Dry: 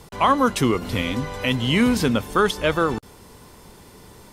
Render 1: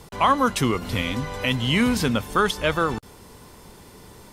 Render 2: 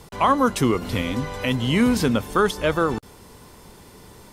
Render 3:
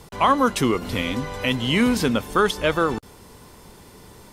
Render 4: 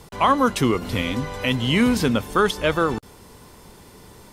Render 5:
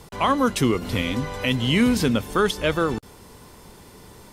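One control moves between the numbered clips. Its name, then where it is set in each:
dynamic EQ, frequency: 360, 2900, 100, 8500, 990 Hz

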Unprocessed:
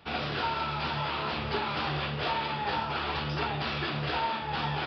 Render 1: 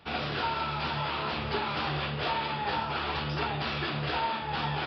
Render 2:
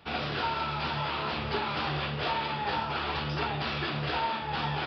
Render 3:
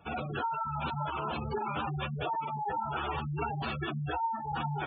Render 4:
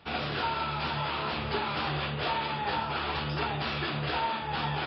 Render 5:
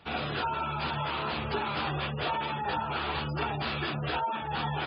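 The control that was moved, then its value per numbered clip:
spectral gate, under each frame's peak: -45, -60, -10, -35, -20 dB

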